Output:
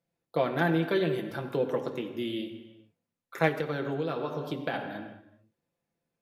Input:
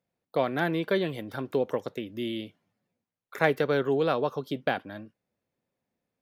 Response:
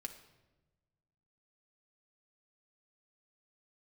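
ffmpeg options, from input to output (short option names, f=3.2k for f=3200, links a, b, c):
-filter_complex "[1:a]atrim=start_sample=2205,afade=t=out:st=0.32:d=0.01,atrim=end_sample=14553,asetrate=26901,aresample=44100[a];[0:a][a]afir=irnorm=-1:irlink=0,asettb=1/sr,asplit=3[b][c][d];[b]atrim=end=3.484[e];[c]atrim=start=3.48:end=4.74,asetpts=PTS-STARTPTS,afade=t=in:d=0.004:c=qsin,afade=t=out:st=1.256:d=0.004:c=qsin,acompressor=threshold=-28dB:ratio=6[f];[d]atrim=start=4.736[g];[e][f]acrossfade=d=0.004:c1=hsin:c2=qsin[h];[h][g]acrossfade=d=0.004:c1=qsin:c2=hsin"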